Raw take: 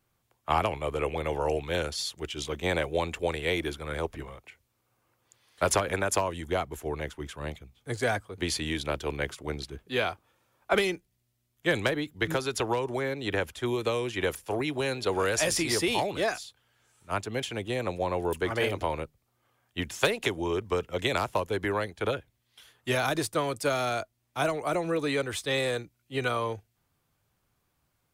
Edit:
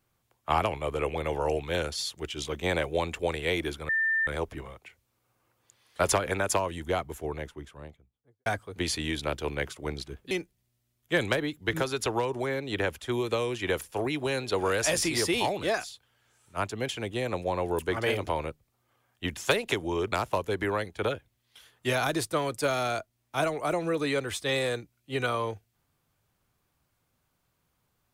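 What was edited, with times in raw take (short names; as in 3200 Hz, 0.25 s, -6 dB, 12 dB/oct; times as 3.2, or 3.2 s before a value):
3.89 add tone 1790 Hz -23 dBFS 0.38 s
6.62–8.08 studio fade out
9.93–10.85 cut
20.66–21.14 cut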